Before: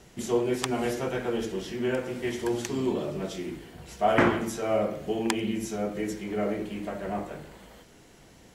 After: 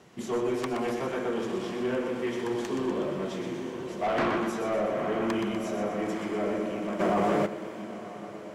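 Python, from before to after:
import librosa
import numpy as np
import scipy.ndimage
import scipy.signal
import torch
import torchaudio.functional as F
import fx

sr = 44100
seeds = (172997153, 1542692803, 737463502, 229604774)

p1 = scipy.signal.sosfilt(scipy.signal.butter(2, 140.0, 'highpass', fs=sr, output='sos'), x)
p2 = fx.peak_eq(p1, sr, hz=1100.0, db=6.5, octaves=0.25)
p3 = fx.echo_diffused(p2, sr, ms=938, feedback_pct=56, wet_db=-10.0)
p4 = 10.0 ** (-23.5 / 20.0) * np.tanh(p3 / 10.0 ** (-23.5 / 20.0))
p5 = fx.high_shelf(p4, sr, hz=5200.0, db=-10.5)
p6 = p5 + fx.echo_feedback(p5, sr, ms=123, feedback_pct=56, wet_db=-6.5, dry=0)
y = fx.env_flatten(p6, sr, amount_pct=100, at=(6.99, 7.45), fade=0.02)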